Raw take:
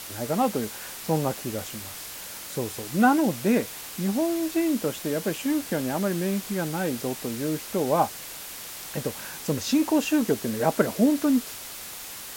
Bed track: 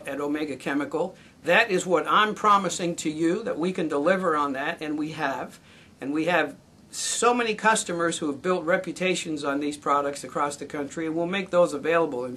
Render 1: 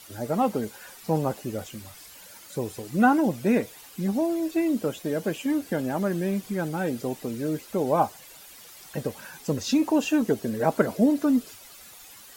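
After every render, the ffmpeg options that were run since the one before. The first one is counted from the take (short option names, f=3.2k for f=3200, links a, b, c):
-af "afftdn=nr=12:nf=-39"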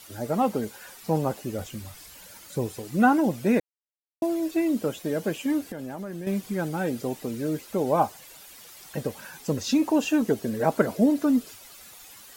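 -filter_complex "[0:a]asettb=1/sr,asplit=3[a][b][c];[a]atrim=end=1.594[d];[b]atrim=start=1.59:end=2.67,asetpts=PTS-STARTPTS,afade=t=in:d=0.004:c=qsin,afade=t=out:st=1.076:d=0.004:c=qsin,lowshelf=f=150:g=7.5[e];[c]atrim=start=2.666[f];[d][e]acrossfade=d=0.004:c1=hsin:c2=qsin[g];[g][f]acrossfade=d=0.004:c1=qsin:c2=hsin,asettb=1/sr,asplit=3[h][i][j];[h]atrim=end=5.614[k];[i]atrim=start=5.61:end=6.27,asetpts=PTS-STARTPTS,afade=t=in:d=0.004:c=qsin,afade=t=out:st=0.656:d=0.004:c=qsin,acompressor=threshold=-31dB:ratio=12:attack=3.2:release=140:knee=1:detection=peak[l];[j]atrim=start=6.266[m];[k][l]acrossfade=d=0.004:c1=hsin:c2=qsin[n];[n][m]acrossfade=d=0.004:c1=qsin:c2=hsin,asplit=3[o][p][q];[o]atrim=end=3.6,asetpts=PTS-STARTPTS,afade=t=out:st=3.596:d=0.004:c=hsin[r];[p]atrim=start=3.6:end=4.22,asetpts=PTS-STARTPTS,volume=0[s];[q]atrim=start=4.22,asetpts=PTS-STARTPTS,afade=t=in:d=0.004:c=hsin[t];[r][s][t]concat=n=3:v=0:a=1"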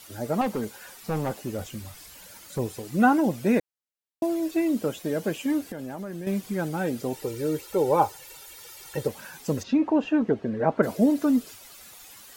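-filter_complex "[0:a]asettb=1/sr,asplit=3[a][b][c];[a]atrim=end=0.414[d];[b]atrim=start=0.41:end=2.59,asetpts=PTS-STARTPTS,afade=t=in:d=0.004:c=qsin,afade=t=out:st=2.176:d=0.004:c=qsin,volume=23dB,asoftclip=hard,volume=-23dB[e];[c]atrim=start=2.586[f];[d][e]acrossfade=d=0.004:c1=hsin:c2=qsin[g];[g][f]acrossfade=d=0.004:c1=qsin:c2=hsin,asettb=1/sr,asplit=3[h][i][j];[h]atrim=end=7.134[k];[i]atrim=start=7.13:end=9.08,asetpts=PTS-STARTPTS,afade=t=in:d=0.004:c=qsin,afade=t=out:st=1.946:d=0.004:c=qsin,aecho=1:1:2.2:0.75,atrim=end_sample=85995[l];[j]atrim=start=9.076[m];[k][l]acrossfade=d=0.004:c1=hsin:c2=qsin[n];[n][m]acrossfade=d=0.004:c1=qsin:c2=hsin,asplit=3[o][p][q];[o]afade=t=out:st=9.62:d=0.02[r];[p]lowpass=2.1k,afade=t=in:st=9.62:d=0.02,afade=t=out:st=10.82:d=0.02[s];[q]afade=t=in:st=10.82:d=0.02[t];[r][s][t]amix=inputs=3:normalize=0"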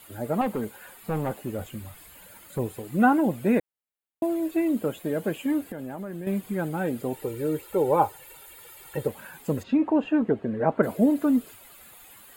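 -af "equalizer=f=5.3k:w=1.4:g=-11,bandreject=f=5.8k:w=5.2"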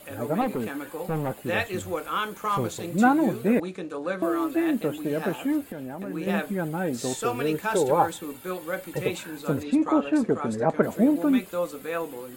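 -filter_complex "[1:a]volume=-8dB[a];[0:a][a]amix=inputs=2:normalize=0"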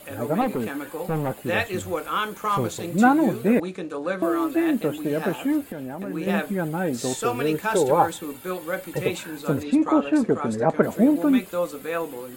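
-af "volume=2.5dB"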